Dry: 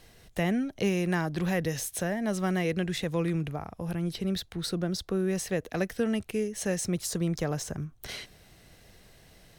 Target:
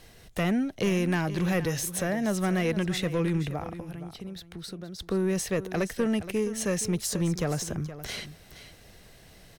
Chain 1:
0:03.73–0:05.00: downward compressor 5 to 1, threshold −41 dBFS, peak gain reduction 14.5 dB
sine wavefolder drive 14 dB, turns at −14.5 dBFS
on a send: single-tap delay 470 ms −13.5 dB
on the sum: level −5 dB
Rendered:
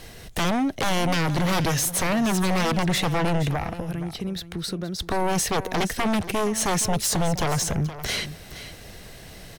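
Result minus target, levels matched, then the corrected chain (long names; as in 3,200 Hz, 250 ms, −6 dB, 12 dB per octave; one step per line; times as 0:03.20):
sine wavefolder: distortion +20 dB
0:03.73–0:05.00: downward compressor 5 to 1, threshold −41 dBFS, peak gain reduction 14.5 dB
sine wavefolder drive 4 dB, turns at −14.5 dBFS
on a send: single-tap delay 470 ms −13.5 dB
on the sum: level −5 dB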